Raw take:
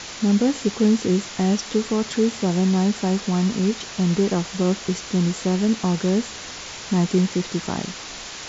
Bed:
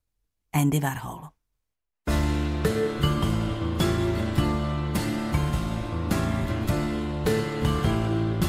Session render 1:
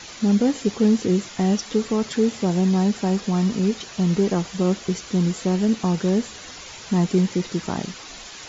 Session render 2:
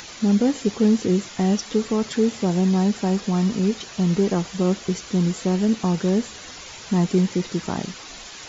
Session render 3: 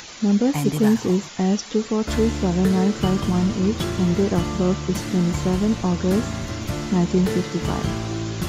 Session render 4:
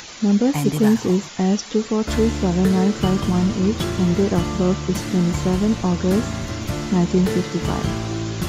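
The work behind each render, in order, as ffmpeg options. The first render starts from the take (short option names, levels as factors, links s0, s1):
-af "afftdn=nr=8:nf=-36"
-af "acompressor=mode=upward:threshold=0.0112:ratio=2.5"
-filter_complex "[1:a]volume=0.794[s0];[0:a][s0]amix=inputs=2:normalize=0"
-af "volume=1.19"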